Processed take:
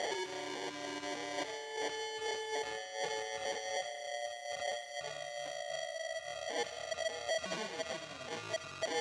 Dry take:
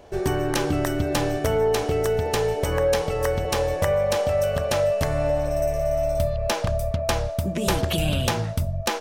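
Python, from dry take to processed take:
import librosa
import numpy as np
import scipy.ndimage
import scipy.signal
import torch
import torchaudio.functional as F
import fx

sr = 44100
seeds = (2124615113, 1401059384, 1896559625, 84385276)

y = fx.spec_gate(x, sr, threshold_db=-10, keep='strong')
y = fx.peak_eq(y, sr, hz=1800.0, db=3.0, octaves=2.7)
y = fx.notch(y, sr, hz=690.0, q=20.0)
y = fx.over_compress(y, sr, threshold_db=-34.0, ratio=-0.5)
y = fx.sample_hold(y, sr, seeds[0], rate_hz=1300.0, jitter_pct=0)
y = 10.0 ** (-35.5 / 20.0) * np.tanh(y / 10.0 ** (-35.5 / 20.0))
y = fx.cabinet(y, sr, low_hz=370.0, low_slope=12, high_hz=8000.0, hz=(1300.0, 2600.0, 3900.0, 6000.0), db=(4, 7, 5, 4))
y = fx.echo_wet_highpass(y, sr, ms=73, feedback_pct=73, hz=1500.0, wet_db=-10)
y = fx.rev_freeverb(y, sr, rt60_s=4.5, hf_ratio=0.75, predelay_ms=0, drr_db=15.0)
y = y * 10.0 ** (3.5 / 20.0)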